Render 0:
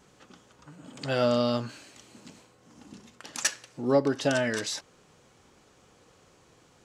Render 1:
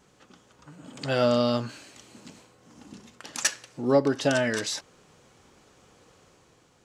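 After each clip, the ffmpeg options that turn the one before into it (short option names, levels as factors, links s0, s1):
-af "dynaudnorm=f=110:g=11:m=1.5,volume=0.841"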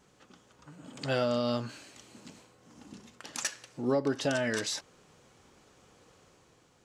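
-af "alimiter=limit=0.178:level=0:latency=1:release=172,volume=0.708"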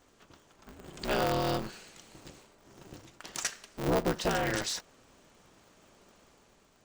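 -af "aeval=exprs='val(0)*sgn(sin(2*PI*100*n/s))':c=same"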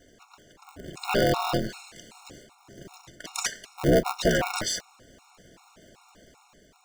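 -af "afftfilt=real='re*gt(sin(2*PI*2.6*pts/sr)*(1-2*mod(floor(b*sr/1024/720),2)),0)':imag='im*gt(sin(2*PI*2.6*pts/sr)*(1-2*mod(floor(b*sr/1024/720),2)),0)':win_size=1024:overlap=0.75,volume=2.66"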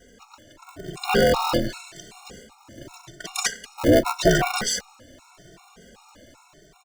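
-filter_complex "[0:a]asplit=2[s0][s1];[s1]adelay=2.1,afreqshift=0.86[s2];[s0][s2]amix=inputs=2:normalize=1,volume=2.37"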